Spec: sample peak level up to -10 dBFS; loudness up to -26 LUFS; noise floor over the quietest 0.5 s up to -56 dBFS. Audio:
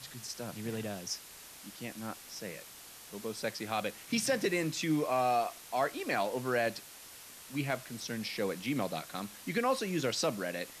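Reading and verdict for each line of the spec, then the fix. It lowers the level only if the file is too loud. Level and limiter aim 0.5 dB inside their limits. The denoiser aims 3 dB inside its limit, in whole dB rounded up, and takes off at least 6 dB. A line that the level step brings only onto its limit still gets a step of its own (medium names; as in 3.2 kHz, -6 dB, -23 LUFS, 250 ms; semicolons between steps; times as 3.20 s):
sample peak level -19.0 dBFS: pass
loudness -34.5 LUFS: pass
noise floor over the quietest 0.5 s -51 dBFS: fail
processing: noise reduction 8 dB, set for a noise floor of -51 dBFS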